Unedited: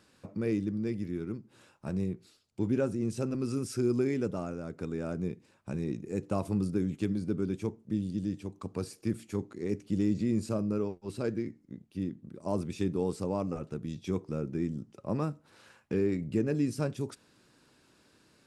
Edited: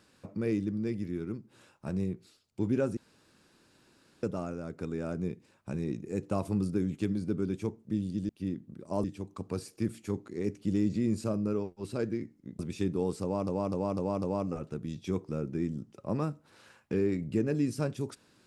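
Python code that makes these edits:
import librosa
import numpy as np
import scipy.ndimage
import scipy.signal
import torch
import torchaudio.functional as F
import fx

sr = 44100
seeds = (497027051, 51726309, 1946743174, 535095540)

y = fx.edit(x, sr, fx.room_tone_fill(start_s=2.97, length_s=1.26),
    fx.move(start_s=11.84, length_s=0.75, to_s=8.29),
    fx.repeat(start_s=13.22, length_s=0.25, count=5), tone=tone)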